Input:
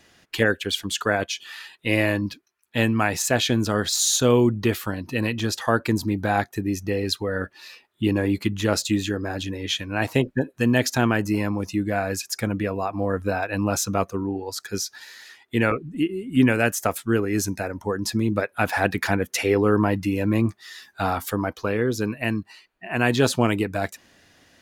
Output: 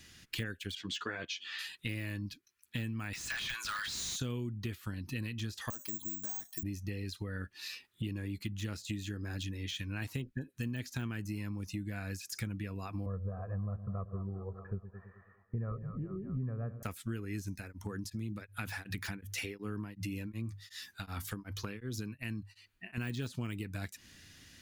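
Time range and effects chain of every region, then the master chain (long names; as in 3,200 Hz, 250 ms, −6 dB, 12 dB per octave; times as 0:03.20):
0:00.75–0:01.59: high-pass filter 220 Hz + high-frequency loss of the air 170 metres + double-tracking delay 12 ms −3 dB
0:03.13–0:04.16: high-pass filter 980 Hz 24 dB per octave + downward compressor 2.5 to 1, threshold −26 dBFS + mid-hump overdrive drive 21 dB, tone 4,700 Hz, clips at −13 dBFS
0:05.70–0:06.63: loudspeaker in its box 350–7,300 Hz, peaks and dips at 420 Hz −9 dB, 990 Hz +8 dB, 1,500 Hz −7 dB, 2,300 Hz −8 dB, 3,400 Hz +9 dB + downward compressor 2 to 1, threshold −33 dBFS + bad sample-rate conversion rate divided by 6×, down filtered, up zero stuff
0:13.06–0:16.83: Butterworth low-pass 1,200 Hz + comb filter 1.7 ms, depth 84% + echo with a time of its own for lows and highs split 550 Hz, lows 108 ms, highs 206 ms, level −14 dB
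0:17.55–0:22.98: mains-hum notches 50/100/150 Hz + downward compressor 2 to 1, threshold −26 dBFS + tremolo along a rectified sine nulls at 2.7 Hz
whole clip: de-essing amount 75%; guitar amp tone stack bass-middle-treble 6-0-2; downward compressor 6 to 1, threshold −53 dBFS; level +17 dB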